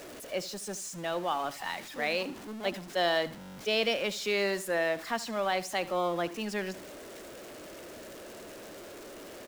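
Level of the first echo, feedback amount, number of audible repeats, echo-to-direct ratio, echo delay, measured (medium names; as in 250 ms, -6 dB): -17.5 dB, 31%, 2, -17.0 dB, 75 ms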